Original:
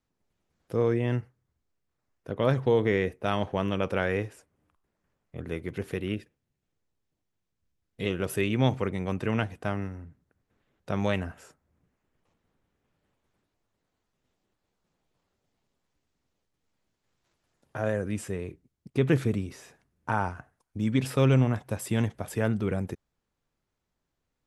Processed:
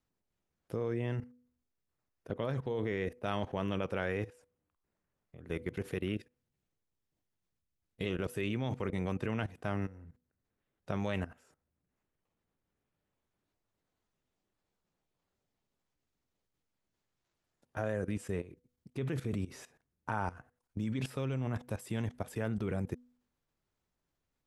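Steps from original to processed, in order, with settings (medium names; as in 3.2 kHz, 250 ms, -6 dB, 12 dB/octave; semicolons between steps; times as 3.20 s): level held to a coarse grid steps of 17 dB; de-hum 245.8 Hz, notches 2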